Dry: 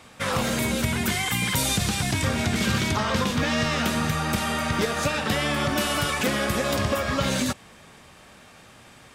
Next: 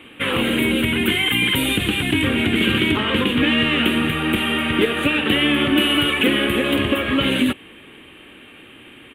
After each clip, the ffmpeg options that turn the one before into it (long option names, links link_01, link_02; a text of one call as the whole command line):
ffmpeg -i in.wav -af "firequalizer=gain_entry='entry(180,0);entry(300,15);entry(640,-3);entry(3000,14);entry(5200,-28);entry(9400,0)':delay=0.05:min_phase=1" out.wav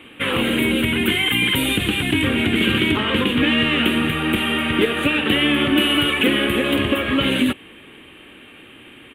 ffmpeg -i in.wav -af anull out.wav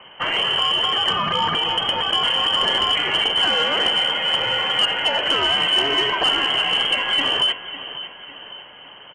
ffmpeg -i in.wav -af "aecho=1:1:552|1104|1656|2208:0.188|0.0885|0.0416|0.0196,lowpass=frequency=2800:width_type=q:width=0.5098,lowpass=frequency=2800:width_type=q:width=0.6013,lowpass=frequency=2800:width_type=q:width=0.9,lowpass=frequency=2800:width_type=q:width=2.563,afreqshift=-3300,asoftclip=type=tanh:threshold=-9.5dB" out.wav